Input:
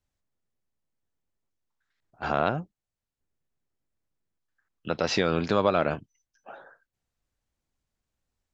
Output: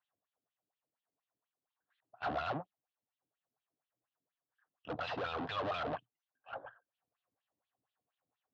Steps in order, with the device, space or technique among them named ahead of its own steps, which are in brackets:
wah-wah guitar rig (LFO wah 4.2 Hz 270–3,400 Hz, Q 3.1; tube saturation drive 46 dB, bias 0.65; loudspeaker in its box 87–3,900 Hz, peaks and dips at 120 Hz +9 dB, 220 Hz −5 dB, 360 Hz −7 dB, 720 Hz +7 dB, 1,100 Hz +4 dB, 2,200 Hz −7 dB)
level +10.5 dB

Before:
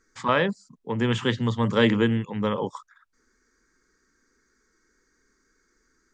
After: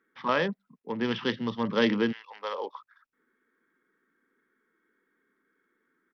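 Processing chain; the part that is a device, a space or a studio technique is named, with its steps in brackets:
0:02.11–0:02.73: high-pass filter 1,000 Hz → 340 Hz 24 dB per octave
Bluetooth headset (high-pass filter 160 Hz 24 dB per octave; downsampling to 8,000 Hz; level −4 dB; SBC 64 kbit/s 44,100 Hz)

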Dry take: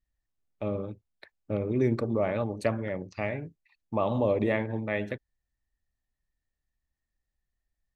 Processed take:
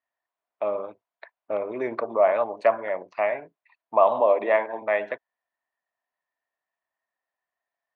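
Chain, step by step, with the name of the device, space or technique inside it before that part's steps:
0:04.20–0:04.82: high-pass filter 200 Hz 12 dB per octave
tin-can telephone (band-pass filter 680–2,100 Hz; hollow resonant body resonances 680/980 Hz, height 10 dB, ringing for 25 ms)
level +7.5 dB

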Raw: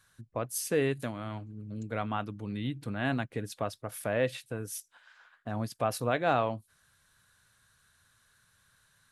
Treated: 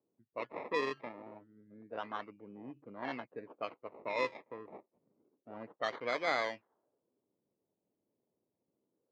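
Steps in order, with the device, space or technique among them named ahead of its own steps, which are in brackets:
circuit-bent sampling toy (sample-and-hold swept by an LFO 23×, swing 60% 0.28 Hz; loudspeaker in its box 430–4,400 Hz, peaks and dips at 740 Hz −5 dB, 1,500 Hz −4 dB, 2,100 Hz +4 dB, 3,500 Hz −5 dB)
low-pass that shuts in the quiet parts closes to 310 Hz, open at −26.5 dBFS
level −3 dB

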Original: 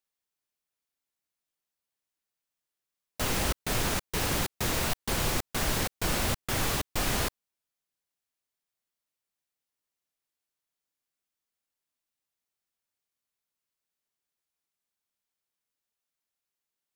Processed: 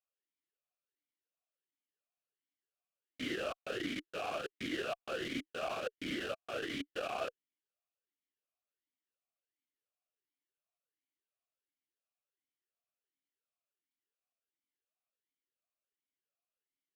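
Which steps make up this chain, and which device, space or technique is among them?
talk box (tube saturation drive 27 dB, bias 0.75; formant filter swept between two vowels a-i 1.4 Hz)
level +9.5 dB

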